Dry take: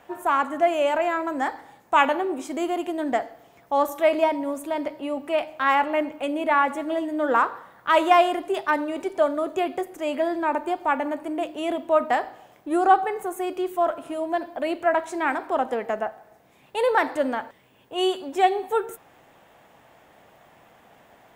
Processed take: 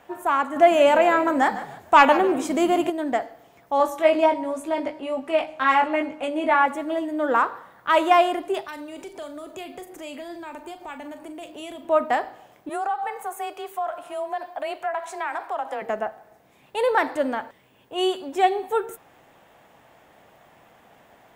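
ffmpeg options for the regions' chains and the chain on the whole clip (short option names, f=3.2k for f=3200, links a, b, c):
-filter_complex "[0:a]asettb=1/sr,asplit=3[a][b][c];[a]atrim=end=0.564[d];[b]atrim=start=0.56:end=2.9,asetpts=PTS-STARTPTS,afade=t=in:d=0.004:c=qsin,afade=t=out:st=2.336:d=0.004:c=qsin,acontrast=46,asplit=4[e][f][g][h];[f]adelay=149,afreqshift=-59,volume=-14dB[i];[g]adelay=298,afreqshift=-118,volume=-24.2dB[j];[h]adelay=447,afreqshift=-177,volume=-34.3dB[k];[e][i][j][k]amix=inputs=4:normalize=0,atrim=end_sample=103194[l];[c]atrim=start=2.896[m];[d][l]acrossfade=d=0.004:c1=hsin:c2=qsin[n];[n][m]acrossfade=d=0.004:c1=qsin:c2=hsin,asettb=1/sr,asplit=3[o][p][q];[o]atrim=end=3.784[r];[p]atrim=start=3.78:end=6.66,asetpts=PTS-STARTPTS,afade=t=in:d=0.004:c=qsin,afade=t=out:st=2.876:d=0.004:c=qsin,lowpass=10k,asplit=2[s][t];[t]adelay=19,volume=-4dB[u];[s][u]amix=inputs=2:normalize=0,atrim=end_sample=127008[v];[q]atrim=start=6.656[w];[r][v]acrossfade=d=0.004:c1=hsin:c2=qsin[x];[x][w]acrossfade=d=0.004:c1=qsin:c2=hsin,asettb=1/sr,asplit=3[y][z][aa];[y]atrim=end=8.644[ab];[z]atrim=start=8.64:end=11.85,asetpts=PTS-STARTPTS,afade=t=in:d=0.004:c=qsin,afade=t=out:st=3.206:d=0.004:c=qsin,acrossover=split=140|3000[ac][ad][ae];[ad]acompressor=threshold=-37dB:ratio=4:attack=3.2:release=140:knee=2.83:detection=peak[af];[ac][af][ae]amix=inputs=3:normalize=0,asplit=2[ag][ah];[ah]adelay=41,volume=-11dB[ai];[ag][ai]amix=inputs=2:normalize=0,atrim=end_sample=141561[aj];[aa]atrim=start=11.846[ak];[ab][aj]acrossfade=d=0.004:c1=hsin:c2=qsin[al];[al][ak]acrossfade=d=0.004:c1=qsin:c2=hsin,asettb=1/sr,asplit=3[am][an][ao];[am]atrim=end=12.694[ap];[an]atrim=start=12.69:end=15.82,asetpts=PTS-STARTPTS,afade=t=in:d=0.004:c=qsin,afade=t=out:st=3.126:d=0.004:c=qsin,lowshelf=f=500:t=q:w=1.5:g=-8.5,acompressor=threshold=-24dB:ratio=4:attack=3.2:release=140:knee=1:detection=peak,afreqshift=23[aq];[ao]atrim=start=15.816[ar];[ap][aq]acrossfade=d=0.004:c1=hsin:c2=qsin[as];[as][ar]acrossfade=d=0.004:c1=qsin:c2=hsin"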